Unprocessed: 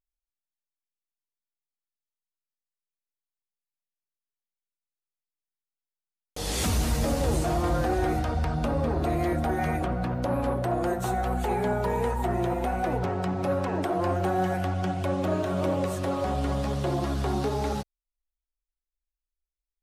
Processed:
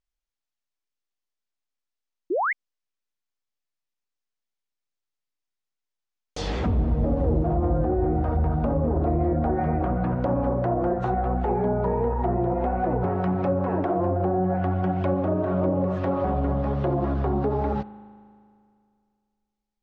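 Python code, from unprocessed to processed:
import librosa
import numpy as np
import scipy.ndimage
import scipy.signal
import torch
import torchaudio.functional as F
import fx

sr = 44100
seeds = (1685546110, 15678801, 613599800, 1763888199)

y = fx.env_lowpass_down(x, sr, base_hz=580.0, full_db=-21.5)
y = scipy.signal.sosfilt(scipy.signal.butter(4, 7100.0, 'lowpass', fs=sr, output='sos'), y)
y = fx.rev_spring(y, sr, rt60_s=2.3, pass_ms=(38,), chirp_ms=55, drr_db=15.5)
y = fx.spec_paint(y, sr, seeds[0], shape='rise', start_s=2.3, length_s=0.23, low_hz=310.0, high_hz=2300.0, level_db=-27.0)
y = y * librosa.db_to_amplitude(3.5)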